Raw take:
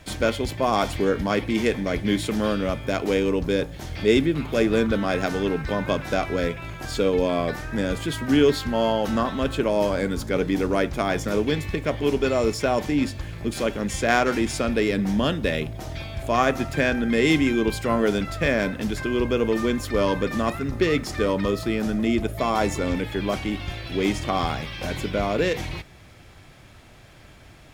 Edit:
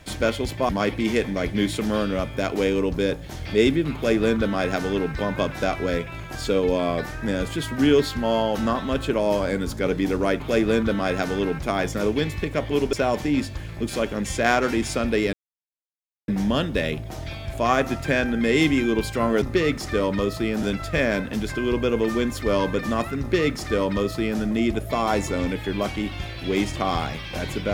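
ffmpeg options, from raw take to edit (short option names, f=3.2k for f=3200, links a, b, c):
-filter_complex "[0:a]asplit=8[a][b][c][d][e][f][g][h];[a]atrim=end=0.692[i];[b]atrim=start=1.188:end=10.902[j];[c]atrim=start=4.438:end=5.632[k];[d]atrim=start=10.898:end=12.242[l];[e]atrim=start=12.568:end=14.97,asetpts=PTS-STARTPTS,afade=t=out:st=2.398:d=0.004:c=hsin,apad=pad_dur=0.95[m];[f]atrim=start=14.97:end=18.112,asetpts=PTS-STARTPTS,afade=t=in:d=0.004:c=hsin[n];[g]atrim=start=20.678:end=21.892[o];[h]atrim=start=18.108[p];[i][j]acrossfade=d=0.004:c1=hsin:c2=hsin[q];[q][k]acrossfade=d=0.004:c1=hsin:c2=hsin[r];[r][l]acrossfade=d=0.004:c1=hsin:c2=hsin[s];[m][n]concat=n=2:v=0:a=1[t];[s][t]acrossfade=d=0.004:c1=hsin:c2=hsin[u];[u][o]acrossfade=d=0.004:c1=hsin:c2=hsin[v];[v][p]acrossfade=d=0.004:c1=hsin:c2=hsin"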